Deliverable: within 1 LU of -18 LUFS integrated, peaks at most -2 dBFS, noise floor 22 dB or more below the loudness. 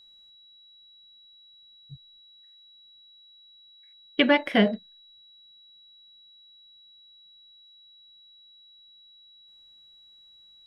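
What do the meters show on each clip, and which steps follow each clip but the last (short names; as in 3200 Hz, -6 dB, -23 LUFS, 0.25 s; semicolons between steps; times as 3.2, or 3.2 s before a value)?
steady tone 3900 Hz; tone level -52 dBFS; loudness -23.5 LUFS; peak -5.5 dBFS; loudness target -18.0 LUFS
-> notch 3900 Hz, Q 30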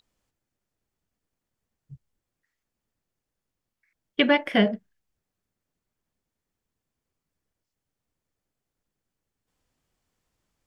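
steady tone none; loudness -23.0 LUFS; peak -5.0 dBFS; loudness target -18.0 LUFS
-> gain +5 dB; limiter -2 dBFS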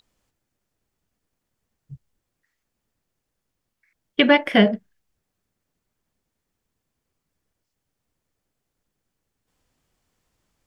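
loudness -18.5 LUFS; peak -2.0 dBFS; noise floor -81 dBFS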